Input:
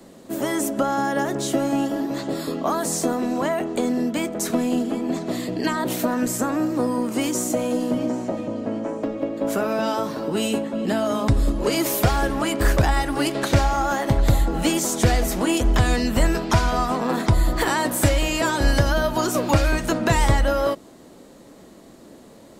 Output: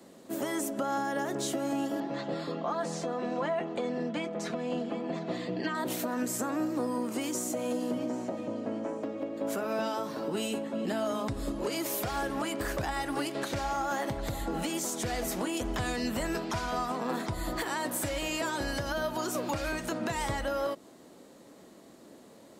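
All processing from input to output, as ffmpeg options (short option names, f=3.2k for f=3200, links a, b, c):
-filter_complex "[0:a]asettb=1/sr,asplit=3[a][b][c];[a]atrim=end=2.004[d];[b]atrim=start=2:end=5.75,asetpts=PTS-STARTPTS,afade=t=in:d=0.004:c=qsin,afade=t=out:st=3.746:d=0.004:c=qsin,lowpass=3.8k,bandreject=f=340:w=7.6,aecho=1:1:5.8:0.57,atrim=end_sample=165375[e];[c]atrim=start=5.746[f];[d][e]acrossfade=d=0.004:c1=hsin:c2=qsin[g];[g][f]acrossfade=d=0.004:c1=qsin:c2=hsin,highpass=f=170:p=1,alimiter=limit=-16.5dB:level=0:latency=1:release=173,volume=-6dB"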